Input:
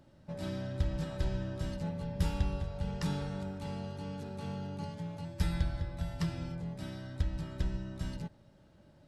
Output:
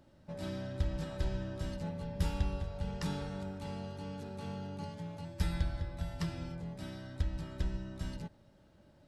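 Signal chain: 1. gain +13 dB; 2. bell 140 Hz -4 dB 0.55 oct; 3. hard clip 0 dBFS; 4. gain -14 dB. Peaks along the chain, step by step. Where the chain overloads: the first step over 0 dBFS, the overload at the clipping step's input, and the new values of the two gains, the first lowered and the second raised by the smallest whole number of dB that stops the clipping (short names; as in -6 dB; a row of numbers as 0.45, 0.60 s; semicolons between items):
-5.0, -5.0, -5.0, -19.0 dBFS; no overload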